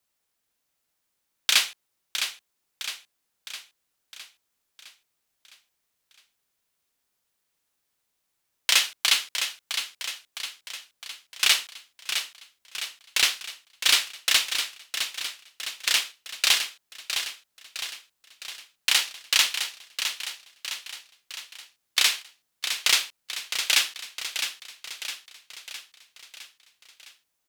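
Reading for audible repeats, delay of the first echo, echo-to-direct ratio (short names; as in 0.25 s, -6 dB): 6, 0.66 s, -6.5 dB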